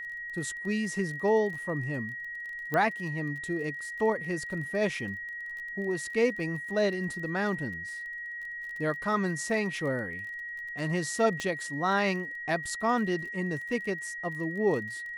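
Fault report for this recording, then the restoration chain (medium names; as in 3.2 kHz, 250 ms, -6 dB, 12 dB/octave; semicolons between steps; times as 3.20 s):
crackle 26 per s -39 dBFS
whine 1.9 kHz -36 dBFS
2.74 s: pop -17 dBFS
11.40 s: pop -20 dBFS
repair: de-click; band-stop 1.9 kHz, Q 30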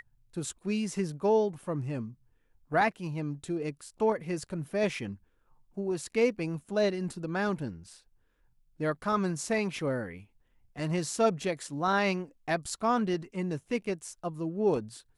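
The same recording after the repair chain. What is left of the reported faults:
nothing left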